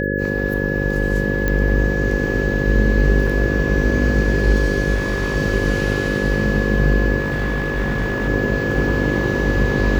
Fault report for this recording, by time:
mains buzz 50 Hz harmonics 11 −22 dBFS
whistle 1,700 Hz −24 dBFS
0:01.48: click −7 dBFS
0:03.27: drop-out 4.8 ms
0:04.94–0:05.37: clipping −15.5 dBFS
0:07.19–0:08.29: clipping −16.5 dBFS

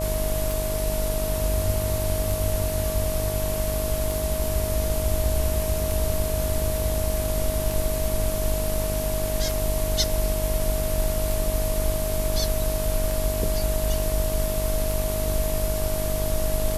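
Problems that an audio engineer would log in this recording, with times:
mains buzz 50 Hz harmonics 23 −29 dBFS
scratch tick 33 1/3 rpm
whistle 630 Hz −28 dBFS

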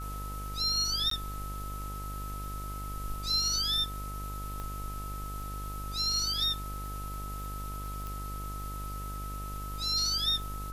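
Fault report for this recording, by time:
mains buzz 50 Hz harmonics 25 −39 dBFS
surface crackle 39 per second −42 dBFS
whistle 1,300 Hz −41 dBFS
0:01.10–0:01.11: drop-out 13 ms
0:04.60: click −26 dBFS
0:08.07: click

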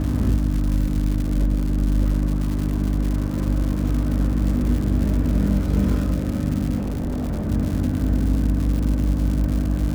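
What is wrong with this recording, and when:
surface crackle 210 per second −26 dBFS
mains hum 50 Hz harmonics 6 −25 dBFS
0:06.77–0:07.49: clipping −21.5 dBFS

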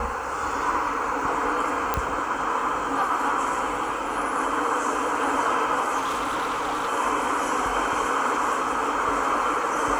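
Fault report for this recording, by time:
0:01.94: click −8 dBFS
0:05.97–0:06.89: clipping −23 dBFS

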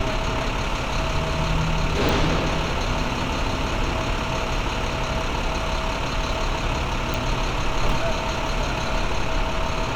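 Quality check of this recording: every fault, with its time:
0:02.09: click
0:07.14: click

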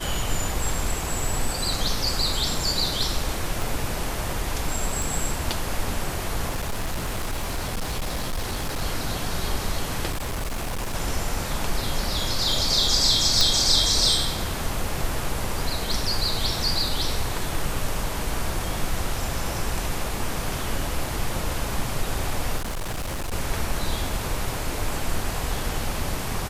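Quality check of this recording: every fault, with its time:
0:03.62: click
0:05.02: click
0:06.49–0:08.82: clipping −23 dBFS
0:10.11–0:10.95: clipping −24.5 dBFS
0:13.41: click
0:22.57–0:23.33: clipping −25.5 dBFS

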